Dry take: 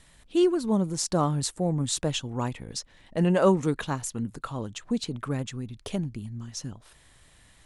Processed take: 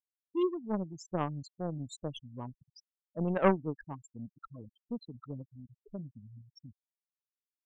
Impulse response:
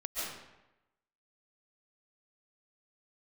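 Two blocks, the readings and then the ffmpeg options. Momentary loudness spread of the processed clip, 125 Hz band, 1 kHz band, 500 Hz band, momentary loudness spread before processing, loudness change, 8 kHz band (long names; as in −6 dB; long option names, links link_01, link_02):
22 LU, −10.5 dB, −6.0 dB, −8.0 dB, 14 LU, −8.0 dB, below −20 dB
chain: -af "afftfilt=real='re*gte(hypot(re,im),0.1)':imag='im*gte(hypot(re,im),0.1)':win_size=1024:overlap=0.75,aeval=exprs='0.335*(cos(1*acos(clip(val(0)/0.335,-1,1)))-cos(1*PI/2))+0.0841*(cos(3*acos(clip(val(0)/0.335,-1,1)))-cos(3*PI/2))':channel_layout=same,volume=-1dB"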